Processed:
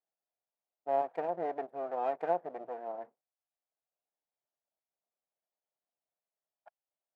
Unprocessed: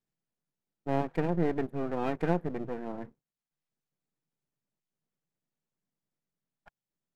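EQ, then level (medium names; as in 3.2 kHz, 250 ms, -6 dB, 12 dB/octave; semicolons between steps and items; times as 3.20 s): band-pass filter 670 Hz, Q 3.4; tilt EQ +3.5 dB/octave; +7.0 dB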